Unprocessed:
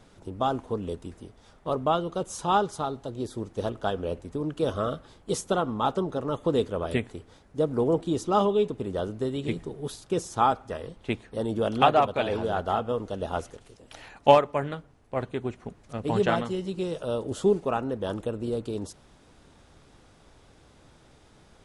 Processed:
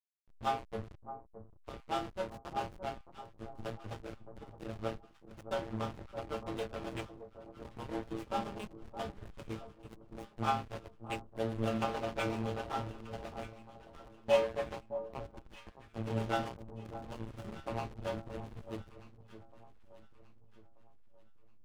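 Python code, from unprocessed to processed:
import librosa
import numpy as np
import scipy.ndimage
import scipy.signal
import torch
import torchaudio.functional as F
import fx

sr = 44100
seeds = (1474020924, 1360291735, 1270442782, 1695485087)

y = fx.bin_compress(x, sr, power=0.6)
y = fx.dynamic_eq(y, sr, hz=2500.0, q=1.8, threshold_db=-45.0, ratio=4.0, max_db=8)
y = fx.harmonic_tremolo(y, sr, hz=7.5, depth_pct=100, crossover_hz=420.0)
y = fx.stiff_resonator(y, sr, f0_hz=110.0, decay_s=0.63, stiffness=0.002)
y = fx.backlash(y, sr, play_db=-33.0)
y = fx.echo_alternate(y, sr, ms=617, hz=1100.0, feedback_pct=58, wet_db=-11.5)
y = y * 10.0 ** (4.0 / 20.0)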